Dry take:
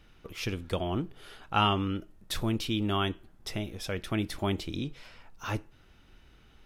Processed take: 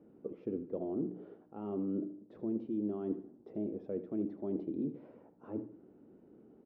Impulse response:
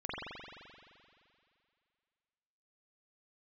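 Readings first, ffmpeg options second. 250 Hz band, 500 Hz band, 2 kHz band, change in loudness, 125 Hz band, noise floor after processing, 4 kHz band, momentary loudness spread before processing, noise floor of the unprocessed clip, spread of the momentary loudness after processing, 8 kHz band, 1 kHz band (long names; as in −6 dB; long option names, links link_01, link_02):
−2.5 dB, −3.0 dB, below −30 dB, −7.0 dB, −14.5 dB, −63 dBFS, below −40 dB, 14 LU, −59 dBFS, 14 LU, below −35 dB, −21.5 dB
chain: -filter_complex "[0:a]bandreject=frequency=60:width_type=h:width=6,bandreject=frequency=120:width_type=h:width=6,bandreject=frequency=180:width_type=h:width=6,bandreject=frequency=240:width_type=h:width=6,bandreject=frequency=300:width_type=h:width=6,areverse,acompressor=threshold=-38dB:ratio=6,areverse,asoftclip=type=tanh:threshold=-30dB,aeval=exprs='val(0)+0.000501*(sin(2*PI*60*n/s)+sin(2*PI*2*60*n/s)/2+sin(2*PI*3*60*n/s)/3+sin(2*PI*4*60*n/s)/4+sin(2*PI*5*60*n/s)/5)':channel_layout=same,asuperpass=centerf=330:order=4:qfactor=1.1,asplit=2[link_01][link_02];[link_02]aecho=0:1:77|154|231|308:0.211|0.0845|0.0338|0.0135[link_03];[link_01][link_03]amix=inputs=2:normalize=0,volume=9dB"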